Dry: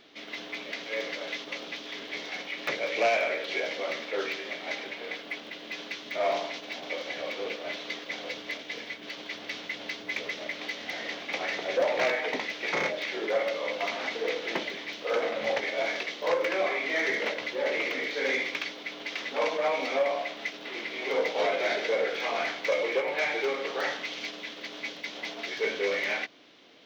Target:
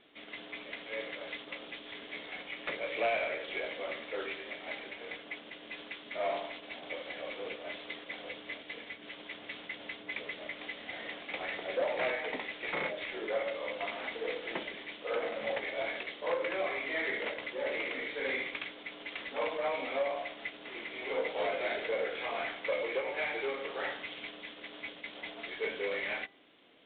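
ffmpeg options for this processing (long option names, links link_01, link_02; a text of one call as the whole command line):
ffmpeg -i in.wav -af "bandreject=frequency=396.7:width_type=h:width=4,bandreject=frequency=793.4:width_type=h:width=4,bandreject=frequency=1190.1:width_type=h:width=4,bandreject=frequency=1586.8:width_type=h:width=4,bandreject=frequency=1983.5:width_type=h:width=4,volume=-6dB" -ar 8000 -c:a adpcm_ima_wav out.wav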